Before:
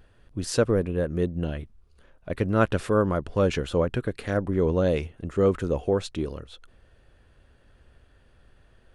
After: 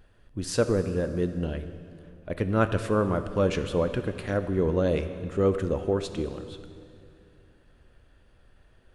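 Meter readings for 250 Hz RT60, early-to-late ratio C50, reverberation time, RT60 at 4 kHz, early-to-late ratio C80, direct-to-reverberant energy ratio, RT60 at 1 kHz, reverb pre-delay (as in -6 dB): 2.9 s, 10.0 dB, 2.5 s, 2.2 s, 11.0 dB, 9.0 dB, 2.4 s, 3 ms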